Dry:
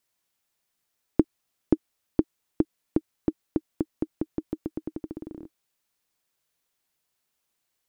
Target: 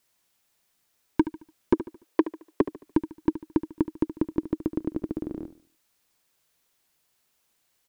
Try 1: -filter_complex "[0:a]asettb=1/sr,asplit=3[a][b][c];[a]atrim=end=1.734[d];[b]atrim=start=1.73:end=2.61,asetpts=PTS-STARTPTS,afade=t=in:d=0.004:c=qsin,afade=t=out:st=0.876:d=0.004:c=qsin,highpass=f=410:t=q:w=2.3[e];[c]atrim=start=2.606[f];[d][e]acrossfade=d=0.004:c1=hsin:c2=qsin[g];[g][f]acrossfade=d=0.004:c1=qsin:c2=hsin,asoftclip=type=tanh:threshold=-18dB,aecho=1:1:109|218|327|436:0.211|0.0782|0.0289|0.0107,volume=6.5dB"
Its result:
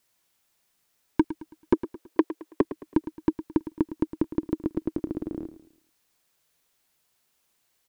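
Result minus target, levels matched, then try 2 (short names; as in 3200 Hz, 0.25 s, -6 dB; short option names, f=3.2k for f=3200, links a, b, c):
echo 36 ms late
-filter_complex "[0:a]asettb=1/sr,asplit=3[a][b][c];[a]atrim=end=1.734[d];[b]atrim=start=1.73:end=2.61,asetpts=PTS-STARTPTS,afade=t=in:d=0.004:c=qsin,afade=t=out:st=0.876:d=0.004:c=qsin,highpass=f=410:t=q:w=2.3[e];[c]atrim=start=2.606[f];[d][e]acrossfade=d=0.004:c1=hsin:c2=qsin[g];[g][f]acrossfade=d=0.004:c1=qsin:c2=hsin,asoftclip=type=tanh:threshold=-18dB,aecho=1:1:73|146|219|292:0.211|0.0782|0.0289|0.0107,volume=6.5dB"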